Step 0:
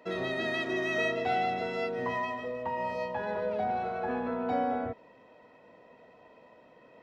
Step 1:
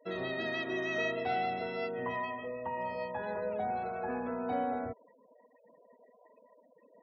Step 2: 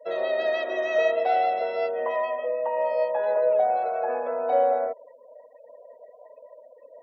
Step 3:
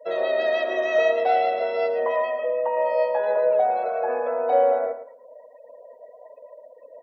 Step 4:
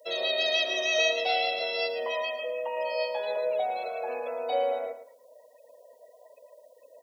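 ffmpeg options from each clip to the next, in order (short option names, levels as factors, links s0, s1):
-af "afftfilt=real='re*gte(hypot(re,im),0.00501)':imag='im*gte(hypot(re,im),0.00501)':win_size=1024:overlap=0.75,volume=0.668"
-af "highpass=f=570:t=q:w=6.5,volume=1.41"
-af "aecho=1:1:111|222|333:0.266|0.0559|0.0117,volume=1.33"
-af "aexciter=amount=12.1:drive=4.4:freq=2500,volume=0.376"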